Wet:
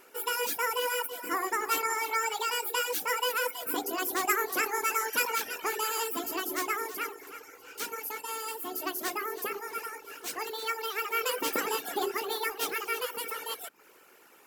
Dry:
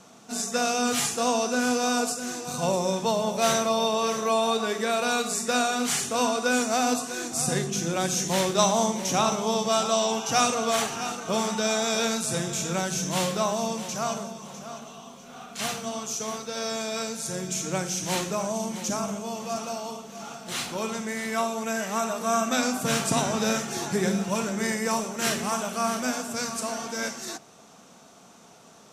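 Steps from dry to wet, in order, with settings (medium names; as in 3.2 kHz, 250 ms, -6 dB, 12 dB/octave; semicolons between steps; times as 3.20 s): reverb removal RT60 0.68 s; speed mistake 7.5 ips tape played at 15 ips; trim -4 dB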